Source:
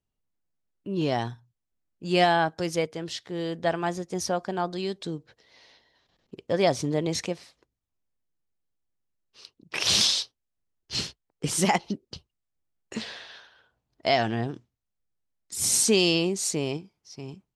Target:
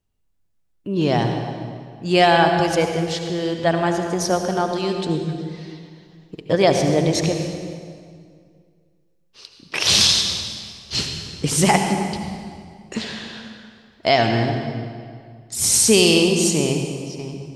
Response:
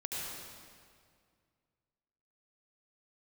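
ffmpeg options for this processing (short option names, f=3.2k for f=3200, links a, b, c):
-filter_complex "[0:a]asettb=1/sr,asplit=3[a][b][c];[a]atrim=end=5.084[d];[b]atrim=start=5.08:end=6.55,asetpts=PTS-STARTPTS,afade=t=in:d=0.004:c=qsin,afade=t=out:st=1.466:d=0.004:c=qsin,aecho=1:1:6.4:0.71,atrim=end_sample=64827[e];[c]atrim=start=6.546[f];[d][e]acrossfade=d=0.004:c1=hsin:c2=qsin[g];[g][f]acrossfade=d=0.004:c1=qsin:c2=hsin,asplit=2[h][i];[i]lowshelf=f=100:g=11[j];[1:a]atrim=start_sample=2205[k];[j][k]afir=irnorm=-1:irlink=0,volume=-3dB[l];[h][l]amix=inputs=2:normalize=0,volume=3dB"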